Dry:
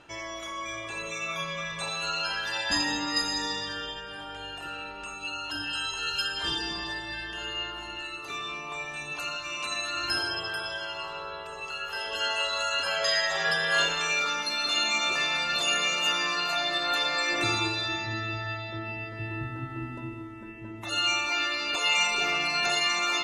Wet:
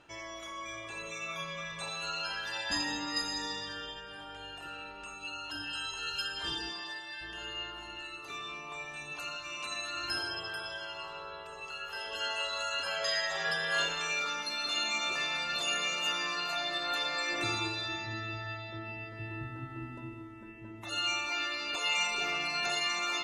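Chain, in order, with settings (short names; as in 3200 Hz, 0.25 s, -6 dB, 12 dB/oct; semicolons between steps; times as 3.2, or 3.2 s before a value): 6.69–7.2 HPF 410 Hz -> 890 Hz 6 dB/oct; gain -6 dB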